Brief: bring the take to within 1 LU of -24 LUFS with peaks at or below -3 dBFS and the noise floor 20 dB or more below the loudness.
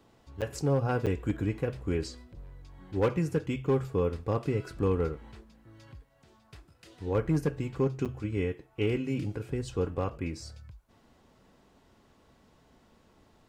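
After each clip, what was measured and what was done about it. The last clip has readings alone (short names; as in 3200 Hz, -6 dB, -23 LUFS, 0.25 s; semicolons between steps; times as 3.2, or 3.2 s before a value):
clipped 0.4%; flat tops at -19.5 dBFS; dropouts 3; longest dropout 7.4 ms; loudness -31.5 LUFS; peak -19.5 dBFS; loudness target -24.0 LUFS
-> clip repair -19.5 dBFS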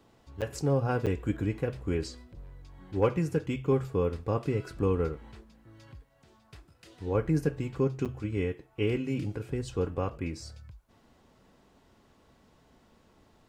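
clipped 0.0%; dropouts 3; longest dropout 7.4 ms
-> interpolate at 0.41/1.06/8.05, 7.4 ms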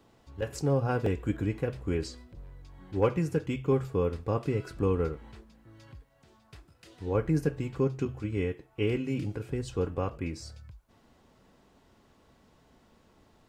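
dropouts 0; loudness -31.0 LUFS; peak -14.0 dBFS; loudness target -24.0 LUFS
-> gain +7 dB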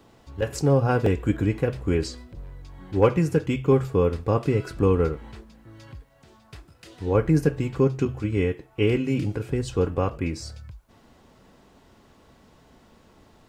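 loudness -24.0 LUFS; peak -7.0 dBFS; noise floor -57 dBFS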